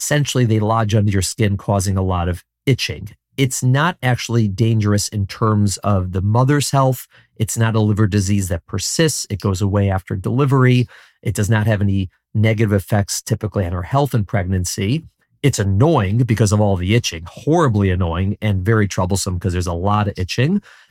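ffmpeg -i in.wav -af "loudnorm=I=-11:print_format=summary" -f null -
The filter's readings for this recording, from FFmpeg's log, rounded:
Input Integrated:    -18.0 LUFS
Input True Peak:      -1.3 dBTP
Input LRA:             1.9 LU
Input Threshold:     -28.1 LUFS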